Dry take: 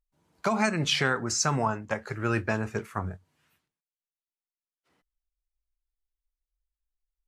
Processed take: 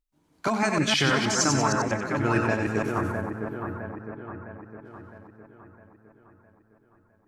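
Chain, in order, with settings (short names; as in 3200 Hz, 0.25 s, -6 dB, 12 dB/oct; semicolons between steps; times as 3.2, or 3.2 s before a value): reverse delay 0.157 s, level -2.5 dB; bell 290 Hz +11.5 dB 0.24 oct; on a send: split-band echo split 1700 Hz, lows 0.659 s, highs 93 ms, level -5.5 dB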